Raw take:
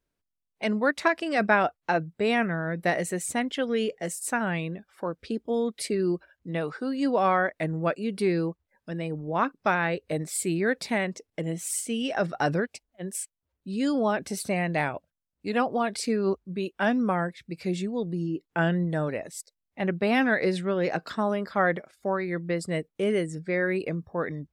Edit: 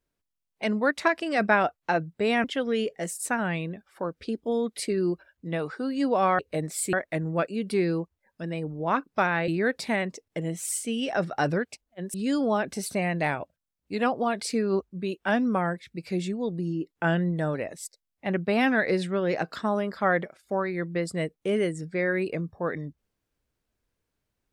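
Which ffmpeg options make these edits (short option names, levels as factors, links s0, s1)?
-filter_complex "[0:a]asplit=6[s0][s1][s2][s3][s4][s5];[s0]atrim=end=2.442[s6];[s1]atrim=start=3.458:end=7.412[s7];[s2]atrim=start=9.958:end=10.502[s8];[s3]atrim=start=7.408:end=9.962[s9];[s4]atrim=start=10.498:end=13.162[s10];[s5]atrim=start=13.678[s11];[s6][s7]acrossfade=d=0.004:c1=hsin:c2=hsin[s12];[s12][s8]acrossfade=d=0.004:c1=hsin:c2=hsin[s13];[s13][s9]acrossfade=d=0.004:c1=hsin:c2=hsin[s14];[s14][s10]acrossfade=d=0.004:c1=hsin:c2=hsin[s15];[s15][s11]acrossfade=d=0.004:c1=hsin:c2=hsin"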